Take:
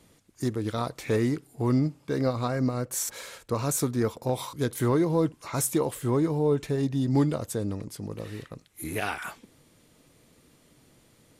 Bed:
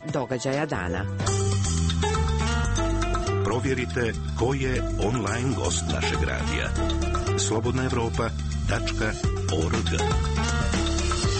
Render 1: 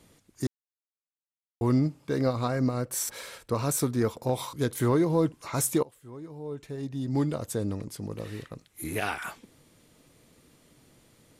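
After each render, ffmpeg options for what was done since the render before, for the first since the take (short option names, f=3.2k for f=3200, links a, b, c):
-filter_complex "[0:a]asettb=1/sr,asplit=3[a][b][c];[a]atrim=end=2.824[d];[b]atrim=start=2.82:end=3.93,asetpts=PTS-STARTPTS,afade=t=in:d=0.004:c=qsin,afade=t=out:st=1.106:d=0.004:c=qsin,bandreject=f=6.8k:w=10[e];[c]atrim=start=3.926[f];[d][e]acrossfade=d=0.004:c1=hsin:c2=qsin[g];[g][f]acrossfade=d=0.004:c1=qsin:c2=hsin,asplit=4[h][i][j][k];[h]atrim=end=0.47,asetpts=PTS-STARTPTS,afade=t=out:st=0.466:d=0.004:c=hsin[l];[i]atrim=start=0.47:end=1.61,asetpts=PTS-STARTPTS,volume=0[m];[j]atrim=start=1.61:end=5.83,asetpts=PTS-STARTPTS,afade=t=in:d=0.004:c=hsin,afade=t=out:st=4.216:d=0.004:c=hsin:silence=0.0891251[n];[k]atrim=start=5.83,asetpts=PTS-STARTPTS,afade=t=in:d=1.74:c=qua:silence=0.0891251[o];[l][m][n][o]concat=n=4:v=0:a=1"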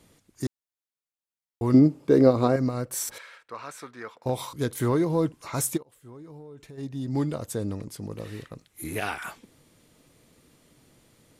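-filter_complex "[0:a]asettb=1/sr,asplit=3[a][b][c];[a]atrim=end=1.744[d];[b]atrim=start=1.74:end=2.56,asetpts=PTS-STARTPTS,afade=t=in:d=0.004:c=qsin,afade=t=out:st=0.816:d=0.004:c=qsin,equalizer=f=370:t=o:w=1.9:g=12[e];[c]atrim=start=2.556[f];[d][e]acrossfade=d=0.004:c1=hsin:c2=qsin[g];[g][f]acrossfade=d=0.004:c1=qsin:c2=hsin,asettb=1/sr,asplit=3[h][i][j];[h]atrim=end=3.184[k];[i]atrim=start=3.18:end=4.26,asetpts=PTS-STARTPTS,afade=t=in:d=0.004:c=qsin,afade=t=out:st=1.076:d=0.004:c=qsin,bandpass=f=1.7k:t=q:w=1.3[l];[j]atrim=start=4.256[m];[k][l]acrossfade=d=0.004:c1=hsin:c2=qsin[n];[n][m]acrossfade=d=0.004:c1=qsin:c2=hsin,asplit=3[o][p][q];[o]afade=t=out:st=5.76:d=0.02[r];[p]acompressor=threshold=-40dB:ratio=16:attack=3.2:release=140:knee=1:detection=peak,afade=t=in:st=5.76:d=0.02,afade=t=out:st=6.77:d=0.02[s];[q]afade=t=in:st=6.77:d=0.02[t];[r][s][t]amix=inputs=3:normalize=0"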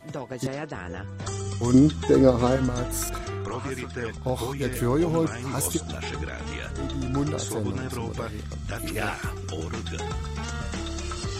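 -filter_complex "[1:a]volume=-7.5dB[a];[0:a][a]amix=inputs=2:normalize=0"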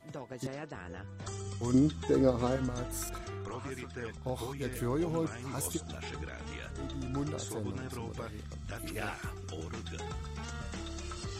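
-af "volume=-9dB"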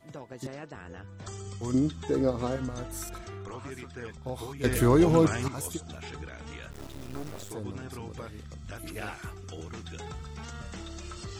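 -filter_complex "[0:a]asplit=3[a][b][c];[a]afade=t=out:st=6.71:d=0.02[d];[b]acrusher=bits=5:dc=4:mix=0:aa=0.000001,afade=t=in:st=6.71:d=0.02,afade=t=out:st=7.5:d=0.02[e];[c]afade=t=in:st=7.5:d=0.02[f];[d][e][f]amix=inputs=3:normalize=0,asplit=3[g][h][i];[g]atrim=end=4.642[j];[h]atrim=start=4.638:end=5.482,asetpts=PTS-STARTPTS,volume=11.5dB[k];[i]atrim=start=5.478[l];[j][k]acrossfade=d=0.004:c1=hsin:c2=hsin[m];[m][l]acrossfade=d=0.004:c1=hsin:c2=hsin"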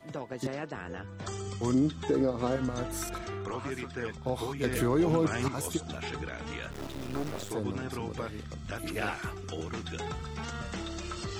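-filter_complex "[0:a]acrossover=split=140|5200[a][b][c];[b]acontrast=32[d];[a][d][c]amix=inputs=3:normalize=0,alimiter=limit=-17.5dB:level=0:latency=1:release=355"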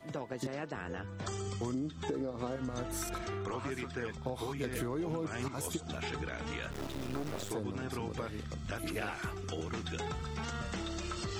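-af "acompressor=threshold=-33dB:ratio=6"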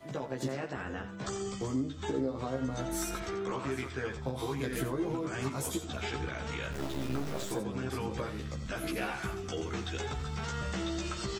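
-filter_complex "[0:a]asplit=2[a][b];[b]adelay=15,volume=-2dB[c];[a][c]amix=inputs=2:normalize=0,aecho=1:1:87:0.282"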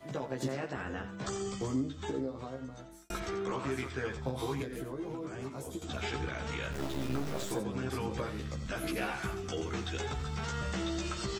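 -filter_complex "[0:a]asettb=1/sr,asplit=3[a][b][c];[a]atrim=end=4.624[d];[b]atrim=start=4.62:end=5.82,asetpts=PTS-STARTPTS,afade=t=in:d=0.004:c=qsin,afade=t=out:st=1.196:d=0.004:c=qsin,acrossover=split=300|690[e][f][g];[e]acompressor=threshold=-44dB:ratio=4[h];[f]acompressor=threshold=-41dB:ratio=4[i];[g]acompressor=threshold=-51dB:ratio=4[j];[h][i][j]amix=inputs=3:normalize=0[k];[c]atrim=start=5.816[l];[d][k]acrossfade=d=0.004:c1=hsin:c2=qsin[m];[m][l]acrossfade=d=0.004:c1=qsin:c2=hsin,asplit=2[n][o];[n]atrim=end=3.1,asetpts=PTS-STARTPTS,afade=t=out:st=1.78:d=1.32[p];[o]atrim=start=3.1,asetpts=PTS-STARTPTS,afade=t=in:d=0.004:c=hsin[q];[p][q]concat=n=2:v=0:a=1"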